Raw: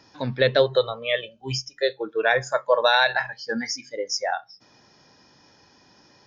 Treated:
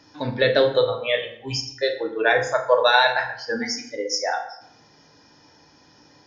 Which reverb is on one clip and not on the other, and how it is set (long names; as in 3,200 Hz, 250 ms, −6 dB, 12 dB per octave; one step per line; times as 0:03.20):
feedback delay network reverb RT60 0.71 s, low-frequency decay 1.2×, high-frequency decay 0.7×, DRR 2.5 dB